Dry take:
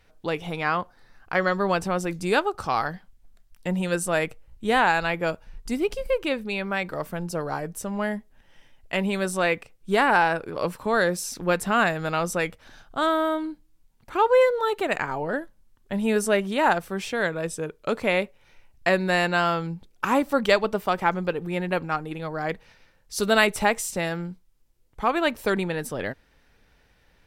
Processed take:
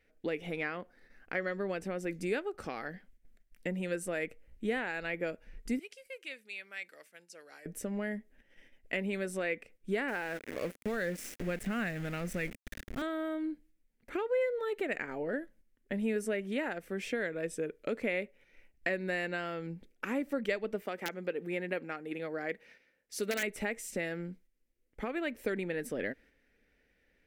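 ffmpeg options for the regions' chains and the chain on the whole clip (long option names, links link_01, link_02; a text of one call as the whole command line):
ffmpeg -i in.wav -filter_complex "[0:a]asettb=1/sr,asplit=3[link_01][link_02][link_03];[link_01]atrim=end=5.794[link_04];[link_02]atrim=start=5.79:end=7.66,asetpts=PTS-STARTPTS,afade=type=in:duration=0.004:curve=qsin,afade=type=out:start_time=1.866:duration=0.004:curve=qsin,acrossover=split=7400[link_05][link_06];[link_06]acompressor=threshold=-54dB:ratio=4:attack=1:release=60[link_07];[link_05][link_07]amix=inputs=2:normalize=0,lowpass=10000,aderivative[link_08];[link_03]atrim=start=7.656[link_09];[link_04][link_08]acrossfade=duration=0.004:curve1=hsin:curve2=qsin[link_10];[link_10][link_09]acrossfade=duration=0.004:curve1=qsin:curve2=hsin,asettb=1/sr,asplit=3[link_11][link_12][link_13];[link_11]atrim=end=10.084[link_14];[link_12]atrim=start=10.08:end=13.02,asetpts=PTS-STARTPTS,afade=type=in:duration=0.004:curve=qsin,afade=type=out:start_time=2.936:duration=0.004:curve=qsin,asubboost=boost=10:cutoff=160,aeval=exprs='val(0)*gte(abs(val(0)),0.0316)':channel_layout=same[link_15];[link_13]atrim=start=13.016[link_16];[link_14][link_15]acrossfade=duration=0.004:curve1=hsin:curve2=qsin[link_17];[link_17][link_16]acrossfade=duration=0.004:curve1=qsin:curve2=hsin,asettb=1/sr,asplit=3[link_18][link_19][link_20];[link_18]atrim=end=20.824[link_21];[link_19]atrim=start=20.82:end=23.43,asetpts=PTS-STARTPTS,afade=type=in:duration=0.004:curve=qsin,afade=type=out:start_time=2.606:duration=0.004:curve=qsin,aeval=exprs='(mod(2.66*val(0)+1,2)-1)/2.66':channel_layout=same,highpass=frequency=260:poles=1[link_22];[link_20]atrim=start=23.426[link_23];[link_21][link_22]acrossfade=duration=0.004:curve1=hsin:curve2=qsin[link_24];[link_24][link_23]acrossfade=duration=0.004:curve1=qsin:curve2=hsin,acompressor=threshold=-30dB:ratio=3,equalizer=frequency=125:width_type=o:width=1:gain=-6,equalizer=frequency=250:width_type=o:width=1:gain=8,equalizer=frequency=500:width_type=o:width=1:gain=7,equalizer=frequency=1000:width_type=o:width=1:gain=-11,equalizer=frequency=2000:width_type=o:width=1:gain=11,equalizer=frequency=4000:width_type=o:width=1:gain=-4,agate=range=-6dB:threshold=-51dB:ratio=16:detection=peak,volume=-7.5dB" out.wav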